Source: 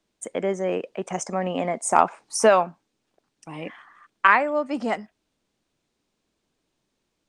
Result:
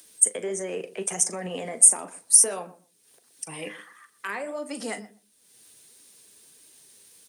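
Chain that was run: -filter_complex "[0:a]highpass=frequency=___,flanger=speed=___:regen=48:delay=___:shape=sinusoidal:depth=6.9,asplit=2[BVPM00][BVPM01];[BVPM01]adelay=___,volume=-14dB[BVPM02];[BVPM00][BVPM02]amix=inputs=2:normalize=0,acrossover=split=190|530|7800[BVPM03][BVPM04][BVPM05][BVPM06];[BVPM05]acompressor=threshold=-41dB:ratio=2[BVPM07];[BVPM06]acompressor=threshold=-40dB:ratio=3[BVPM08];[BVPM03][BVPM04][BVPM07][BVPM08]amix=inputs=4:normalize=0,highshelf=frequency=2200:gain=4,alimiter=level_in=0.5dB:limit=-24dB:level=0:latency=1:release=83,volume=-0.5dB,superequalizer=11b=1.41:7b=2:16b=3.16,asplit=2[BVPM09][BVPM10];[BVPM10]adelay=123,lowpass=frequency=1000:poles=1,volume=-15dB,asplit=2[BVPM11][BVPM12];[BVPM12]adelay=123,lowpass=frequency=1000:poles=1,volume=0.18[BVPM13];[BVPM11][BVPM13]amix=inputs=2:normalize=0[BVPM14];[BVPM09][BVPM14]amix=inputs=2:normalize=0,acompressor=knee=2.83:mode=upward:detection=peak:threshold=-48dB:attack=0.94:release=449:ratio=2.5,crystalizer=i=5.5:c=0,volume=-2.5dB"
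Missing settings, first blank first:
50, 1.5, 3.1, 39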